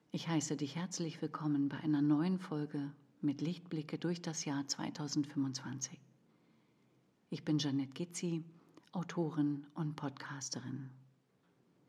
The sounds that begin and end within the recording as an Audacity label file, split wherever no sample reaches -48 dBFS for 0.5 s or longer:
7.320000	10.880000	sound